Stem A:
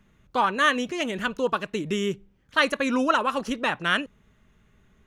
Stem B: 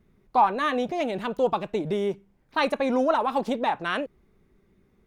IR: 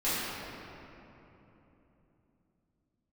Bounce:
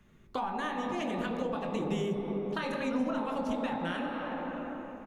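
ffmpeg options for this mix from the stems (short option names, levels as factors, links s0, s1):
-filter_complex "[0:a]alimiter=limit=0.178:level=0:latency=1:release=265,volume=0.794[s0];[1:a]adelay=23,volume=0.398,asplit=2[s1][s2];[s2]volume=0.531[s3];[2:a]atrim=start_sample=2205[s4];[s3][s4]afir=irnorm=-1:irlink=0[s5];[s0][s1][s5]amix=inputs=3:normalize=0,acrossover=split=200[s6][s7];[s7]acompressor=threshold=0.0224:ratio=6[s8];[s6][s8]amix=inputs=2:normalize=0"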